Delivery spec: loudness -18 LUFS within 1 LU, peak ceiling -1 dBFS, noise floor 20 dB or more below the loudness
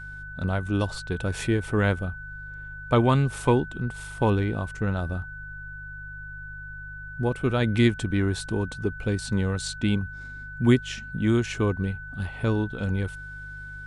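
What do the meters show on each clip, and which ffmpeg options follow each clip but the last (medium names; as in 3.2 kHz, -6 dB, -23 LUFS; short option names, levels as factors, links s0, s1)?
hum 50 Hz; highest harmonic 150 Hz; hum level -40 dBFS; steady tone 1.5 kHz; tone level -38 dBFS; loudness -26.0 LUFS; peak level -7.0 dBFS; loudness target -18.0 LUFS
-> -af "bandreject=f=50:t=h:w=4,bandreject=f=100:t=h:w=4,bandreject=f=150:t=h:w=4"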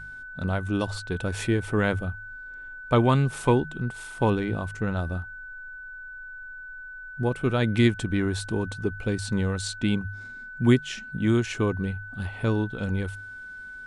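hum not found; steady tone 1.5 kHz; tone level -38 dBFS
-> -af "bandreject=f=1500:w=30"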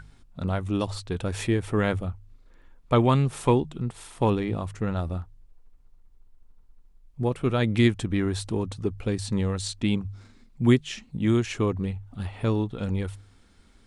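steady tone not found; loudness -26.5 LUFS; peak level -7.0 dBFS; loudness target -18.0 LUFS
-> -af "volume=2.66,alimiter=limit=0.891:level=0:latency=1"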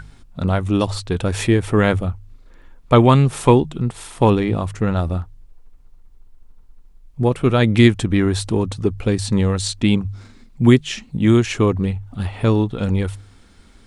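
loudness -18.5 LUFS; peak level -1.0 dBFS; noise floor -48 dBFS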